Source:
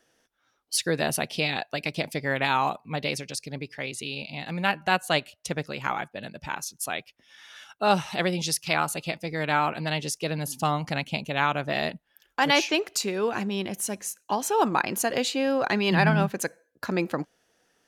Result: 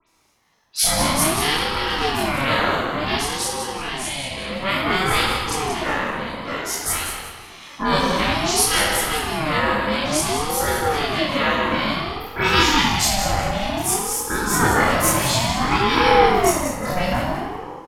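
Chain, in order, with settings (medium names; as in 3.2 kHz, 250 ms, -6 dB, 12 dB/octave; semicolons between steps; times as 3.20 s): every event in the spectrogram widened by 60 ms; short-mantissa float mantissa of 8-bit; treble shelf 5.1 kHz +7 dB; phase dispersion highs, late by 75 ms, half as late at 2.7 kHz; on a send: frequency-shifting echo 182 ms, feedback 31%, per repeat -41 Hz, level -8.5 dB; on the sum: simulated room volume 1600 m³, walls mixed, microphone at 2.9 m; ring modulator with a swept carrier 510 Hz, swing 30%, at 0.56 Hz; trim -1 dB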